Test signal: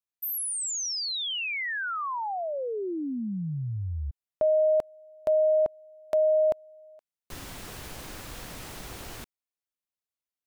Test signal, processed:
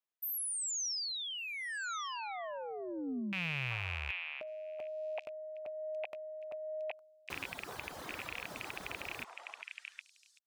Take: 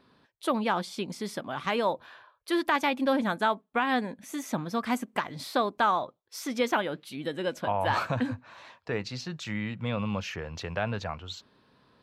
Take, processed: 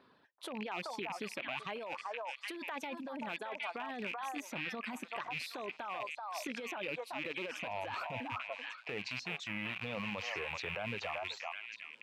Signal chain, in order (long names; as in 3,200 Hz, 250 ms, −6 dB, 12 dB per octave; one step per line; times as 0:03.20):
loose part that buzzes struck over −41 dBFS, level −20 dBFS
bass and treble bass −8 dB, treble −8 dB
reverb reduction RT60 1.4 s
dynamic equaliser 1,300 Hz, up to −5 dB, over −40 dBFS, Q 1.3
high-pass filter 58 Hz
echo through a band-pass that steps 382 ms, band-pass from 920 Hz, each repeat 1.4 octaves, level −3 dB
brickwall limiter −26.5 dBFS
compressor whose output falls as the input rises −38 dBFS, ratio −1
level −2 dB